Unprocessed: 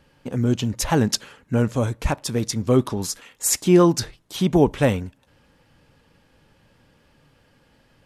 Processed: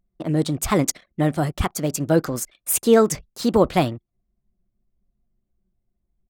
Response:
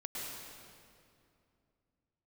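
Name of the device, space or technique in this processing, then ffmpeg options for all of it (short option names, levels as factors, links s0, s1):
nightcore: -af "asetrate=56448,aresample=44100,anlmdn=0.251"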